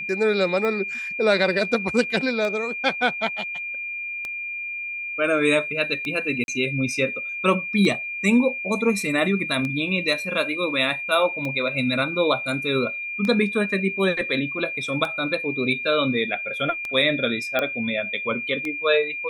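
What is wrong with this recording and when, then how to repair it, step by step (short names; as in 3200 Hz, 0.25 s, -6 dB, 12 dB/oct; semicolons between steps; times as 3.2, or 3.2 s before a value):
tick 33 1/3 rpm -16 dBFS
tone 2400 Hz -28 dBFS
6.44–6.48 gap 41 ms
17.59 pop -10 dBFS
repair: de-click; notch 2400 Hz, Q 30; interpolate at 6.44, 41 ms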